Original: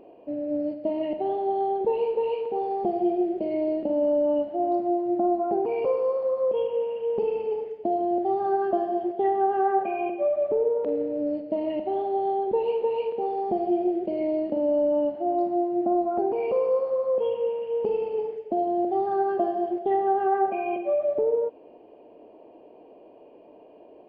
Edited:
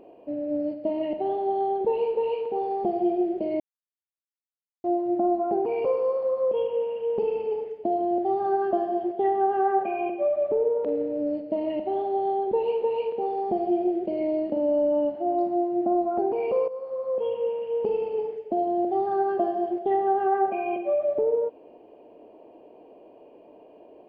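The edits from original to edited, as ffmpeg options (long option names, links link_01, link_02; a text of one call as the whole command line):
ffmpeg -i in.wav -filter_complex "[0:a]asplit=4[link_01][link_02][link_03][link_04];[link_01]atrim=end=3.6,asetpts=PTS-STARTPTS,afade=type=out:start_time=3.596:duration=0.004:curve=hsin[link_05];[link_02]atrim=start=3.6:end=4.84,asetpts=PTS-STARTPTS,volume=0[link_06];[link_03]atrim=start=4.84:end=16.68,asetpts=PTS-STARTPTS,afade=type=in:duration=0.004:curve=hsin,afade=type=out:start_time=11.836:duration=0.004:curve=hsin:silence=0.177828[link_07];[link_04]atrim=start=16.68,asetpts=PTS-STARTPTS,afade=type=in:duration=1.01:curve=qsin:silence=0.177828[link_08];[link_05][link_06][link_07][link_08]concat=n=4:v=0:a=1" out.wav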